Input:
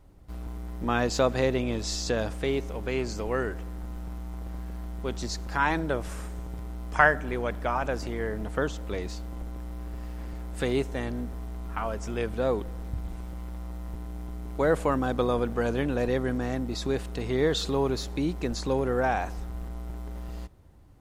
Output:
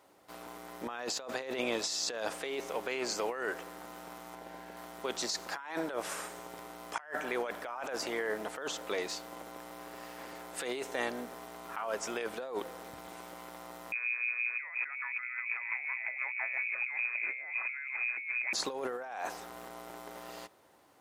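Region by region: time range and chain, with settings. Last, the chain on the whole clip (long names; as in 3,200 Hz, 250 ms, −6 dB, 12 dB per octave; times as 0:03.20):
0:04.35–0:04.77: Butterworth band-reject 1,200 Hz, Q 6.3 + high-shelf EQ 4,300 Hz −7 dB
0:13.92–0:18.53: two-band tremolo in antiphase 5.8 Hz, crossover 450 Hz + voice inversion scrambler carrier 2,500 Hz
whole clip: high-pass filter 540 Hz 12 dB per octave; compressor whose output falls as the input rises −37 dBFS, ratio −1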